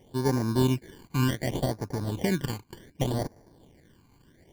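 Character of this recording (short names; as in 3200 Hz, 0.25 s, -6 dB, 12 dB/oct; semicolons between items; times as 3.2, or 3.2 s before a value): aliases and images of a low sample rate 1300 Hz, jitter 0%; phasing stages 12, 0.67 Hz, lowest notch 580–3100 Hz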